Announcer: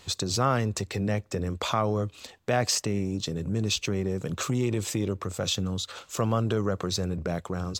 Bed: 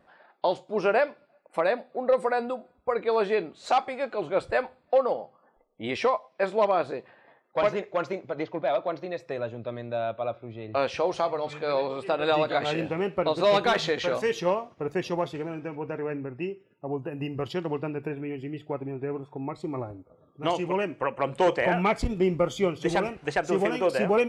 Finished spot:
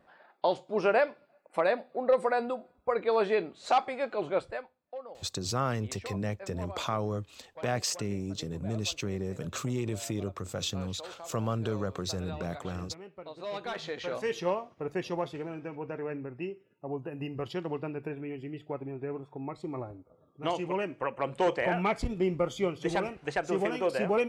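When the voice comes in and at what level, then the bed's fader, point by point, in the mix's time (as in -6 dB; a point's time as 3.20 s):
5.15 s, -5.5 dB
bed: 4.33 s -2 dB
4.73 s -19.5 dB
13.26 s -19.5 dB
14.34 s -4.5 dB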